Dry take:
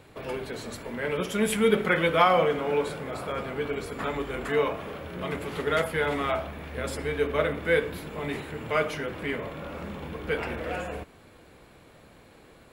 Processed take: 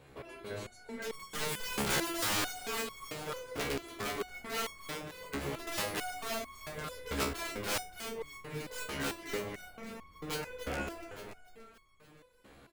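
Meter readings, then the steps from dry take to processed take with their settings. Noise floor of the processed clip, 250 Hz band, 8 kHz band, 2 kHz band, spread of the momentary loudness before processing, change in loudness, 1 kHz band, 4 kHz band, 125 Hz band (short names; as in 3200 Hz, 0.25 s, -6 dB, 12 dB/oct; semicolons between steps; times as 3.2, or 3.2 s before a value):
-60 dBFS, -10.0 dB, +3.5 dB, -8.5 dB, 14 LU, -9.0 dB, -10.5 dB, -2.0 dB, -9.5 dB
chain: wrapped overs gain 21 dB; frequency-shifting echo 0.287 s, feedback 56%, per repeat -34 Hz, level -6 dB; stepped resonator 4.5 Hz 69–1100 Hz; gain +3 dB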